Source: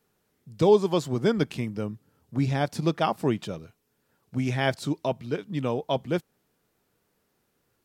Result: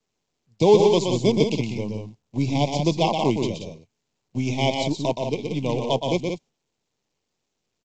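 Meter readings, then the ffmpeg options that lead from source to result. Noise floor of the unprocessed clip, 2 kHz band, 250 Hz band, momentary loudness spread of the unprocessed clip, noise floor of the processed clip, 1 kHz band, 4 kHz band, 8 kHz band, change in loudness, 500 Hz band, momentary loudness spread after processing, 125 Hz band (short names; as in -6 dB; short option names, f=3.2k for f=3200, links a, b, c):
-74 dBFS, +0.5 dB, +4.0 dB, 13 LU, -79 dBFS, +4.0 dB, +8.0 dB, +8.5 dB, +4.5 dB, +4.5 dB, 15 LU, +3.5 dB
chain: -filter_complex "[0:a]agate=range=-22dB:threshold=-42dB:ratio=16:detection=peak,highshelf=f=4.6k:g=8,acrossover=split=160[a][b];[a]acompressor=threshold=-29dB:ratio=6[c];[c][b]amix=inputs=2:normalize=0,asplit=2[d][e];[e]acrusher=bits=4:dc=4:mix=0:aa=0.000001,volume=-8dB[f];[d][f]amix=inputs=2:normalize=0,asuperstop=centerf=1500:order=12:qfactor=1.4,aecho=1:1:122.4|177.8:0.562|0.447" -ar 16000 -c:a pcm_mulaw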